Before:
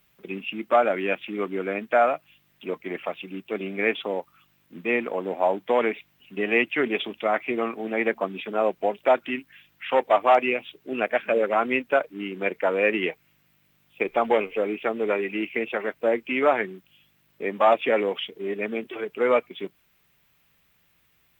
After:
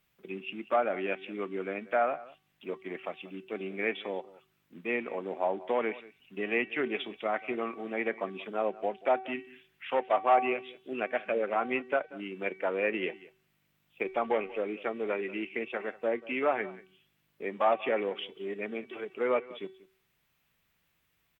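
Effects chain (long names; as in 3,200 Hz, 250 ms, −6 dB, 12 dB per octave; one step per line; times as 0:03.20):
treble cut that deepens with the level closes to 2,900 Hz, closed at −16 dBFS
tuned comb filter 380 Hz, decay 0.55 s, mix 60%
single-tap delay 186 ms −19.5 dB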